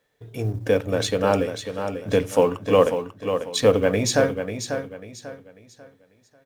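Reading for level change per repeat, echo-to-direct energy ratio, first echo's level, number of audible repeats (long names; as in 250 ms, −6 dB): −10.0 dB, −7.5 dB, −8.0 dB, 3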